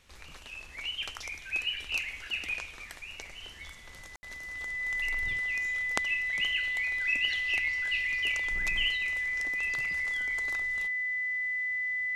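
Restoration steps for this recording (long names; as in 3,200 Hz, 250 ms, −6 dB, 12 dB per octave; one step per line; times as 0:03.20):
notch filter 2,000 Hz, Q 30
ambience match 0:04.16–0:04.23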